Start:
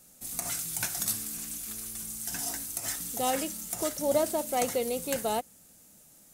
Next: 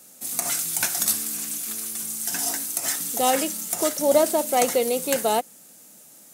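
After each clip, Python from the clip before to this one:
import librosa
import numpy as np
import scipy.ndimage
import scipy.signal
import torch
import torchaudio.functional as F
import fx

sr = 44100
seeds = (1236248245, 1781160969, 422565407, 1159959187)

y = scipy.signal.sosfilt(scipy.signal.butter(2, 220.0, 'highpass', fs=sr, output='sos'), x)
y = y * librosa.db_to_amplitude(8.0)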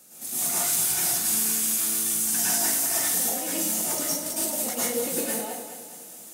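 y = fx.over_compress(x, sr, threshold_db=-27.0, ratio=-0.5)
y = fx.echo_feedback(y, sr, ms=210, feedback_pct=50, wet_db=-10.0)
y = fx.rev_plate(y, sr, seeds[0], rt60_s=0.58, hf_ratio=0.95, predelay_ms=95, drr_db=-8.0)
y = y * librosa.db_to_amplitude(-7.5)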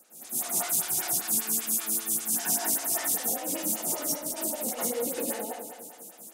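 y = fx.stagger_phaser(x, sr, hz=5.1)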